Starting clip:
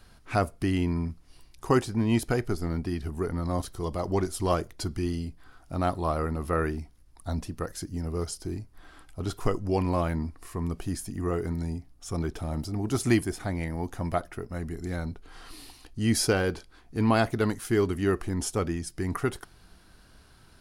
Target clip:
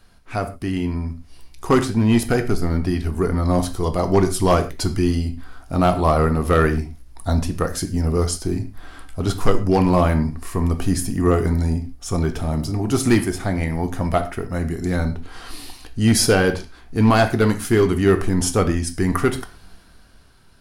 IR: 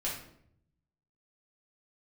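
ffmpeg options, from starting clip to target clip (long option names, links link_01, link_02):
-filter_complex "[0:a]dynaudnorm=framelen=140:gausssize=17:maxgain=11.5dB,volume=9dB,asoftclip=hard,volume=-9dB,asplit=2[link_01][link_02];[1:a]atrim=start_sample=2205,atrim=end_sample=6174[link_03];[link_02][link_03]afir=irnorm=-1:irlink=0,volume=-8dB[link_04];[link_01][link_04]amix=inputs=2:normalize=0,volume=-2dB"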